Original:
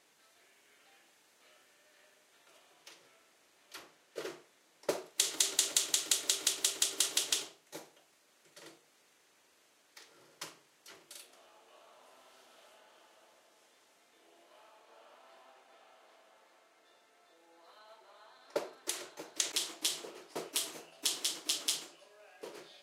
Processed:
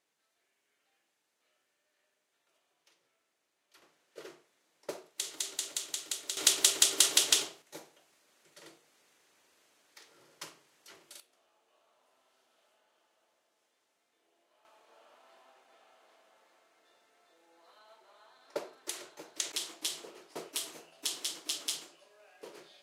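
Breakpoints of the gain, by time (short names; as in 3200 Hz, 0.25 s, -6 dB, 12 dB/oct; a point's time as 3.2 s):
-13.5 dB
from 3.82 s -6.5 dB
from 6.37 s +6.5 dB
from 7.62 s -0.5 dB
from 11.2 s -11 dB
from 14.65 s -2 dB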